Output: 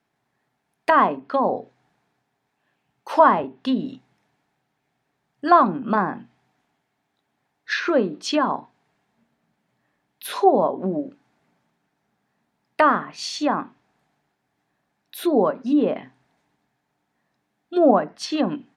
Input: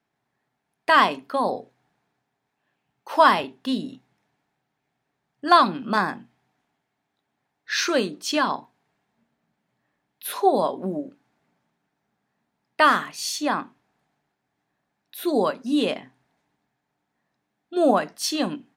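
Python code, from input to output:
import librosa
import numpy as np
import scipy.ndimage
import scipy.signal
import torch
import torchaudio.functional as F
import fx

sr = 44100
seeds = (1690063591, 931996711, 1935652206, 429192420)

y = fx.env_lowpass_down(x, sr, base_hz=1100.0, full_db=-19.0)
y = y * librosa.db_to_amplitude(3.5)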